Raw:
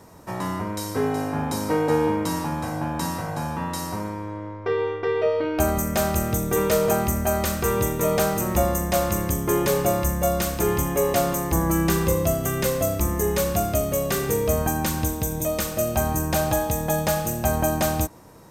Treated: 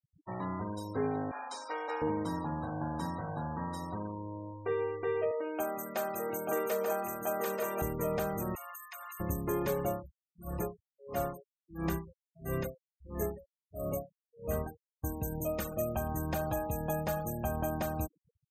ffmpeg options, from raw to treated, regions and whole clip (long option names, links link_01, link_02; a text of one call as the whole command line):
ffmpeg -i in.wav -filter_complex "[0:a]asettb=1/sr,asplit=3[link_01][link_02][link_03];[link_01]atrim=end=1.314[link_04];[link_02]atrim=start=1.31:end=2.02,asetpts=PTS-STARTPTS,afade=type=in:duration=0.004:curve=qsin,afade=type=out:start_time=0.706:duration=0.004:curve=qsin,highpass=780,lowpass=7700,highshelf=frequency=2700:gain=7.5[link_05];[link_03]atrim=start=2.016[link_06];[link_04][link_05]acrossfade=duration=0.004:curve1=hsin:curve2=qsin[link_07];[link_07][link_06]acrossfade=duration=0.004:curve1=qsin:curve2=hsin,asettb=1/sr,asplit=3[link_08][link_09][link_10];[link_08]atrim=end=5.314[link_11];[link_09]atrim=start=5.31:end=7.82,asetpts=PTS-STARTPTS,afade=type=in:duration=0.004:curve=qsin,afade=type=out:start_time=2.506:duration=0.004:curve=qsin,highpass=350,aecho=1:1:886:0.668,atrim=end_sample=110691[link_12];[link_10]atrim=start=7.816[link_13];[link_11][link_12]acrossfade=duration=0.004:curve1=hsin:curve2=qsin[link_14];[link_14][link_13]acrossfade=duration=0.004:curve1=qsin:curve2=hsin,asettb=1/sr,asplit=3[link_15][link_16][link_17];[link_15]atrim=end=8.554[link_18];[link_16]atrim=start=8.55:end=9.2,asetpts=PTS-STARTPTS,afade=type=in:duration=0.004:curve=qsin,afade=type=out:start_time=0.646:duration=0.004:curve=qsin,highpass=frequency=1100:width=0.5412,highpass=frequency=1100:width=1.3066,bandreject=frequency=5800:width=17,acompressor=threshold=-29dB:ratio=4:attack=3.2:release=140:knee=1:detection=peak[link_19];[link_17]atrim=start=9.196[link_20];[link_18][link_19]acrossfade=duration=0.004:curve1=hsin:curve2=qsin[link_21];[link_21][link_20]acrossfade=duration=0.004:curve1=qsin:curve2=hsin,asettb=1/sr,asplit=3[link_22][link_23][link_24];[link_22]atrim=end=9.904[link_25];[link_23]atrim=start=9.9:end=15.04,asetpts=PTS-STARTPTS,afade=type=in:duration=0.004:curve=qsin,afade=type=out:start_time=5.136:duration=0.004:curve=qsin,aecho=1:1:402:0.447,atrim=end_sample=226674,aeval=exprs='val(0)*pow(10,-37*(0.5-0.5*cos(2*PI*1.5*n/s))/20)':channel_layout=same[link_26];[link_24]atrim=start=15.036[link_27];[link_25][link_26]acrossfade=duration=0.004:curve1=hsin:curve2=qsin[link_28];[link_28][link_27]acrossfade=duration=0.004:curve1=qsin:curve2=hsin,afftfilt=real='re*gte(hypot(re,im),0.0316)':imag='im*gte(hypot(re,im),0.0316)':win_size=1024:overlap=0.75,equalizer=frequency=6300:width_type=o:width=1.8:gain=-7,alimiter=limit=-13.5dB:level=0:latency=1:release=388,volume=-8.5dB" out.wav